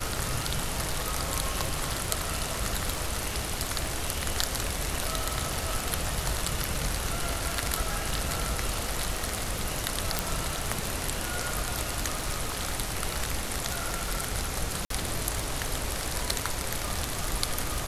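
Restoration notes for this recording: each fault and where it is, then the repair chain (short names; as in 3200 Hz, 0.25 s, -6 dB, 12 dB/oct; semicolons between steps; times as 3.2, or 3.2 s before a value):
crackle 59/s -35 dBFS
10.19 pop
14.85–14.9 gap 53 ms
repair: de-click; interpolate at 14.85, 53 ms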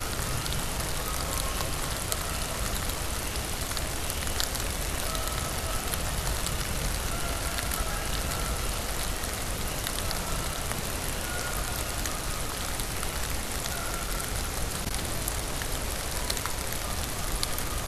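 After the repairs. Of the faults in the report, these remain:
none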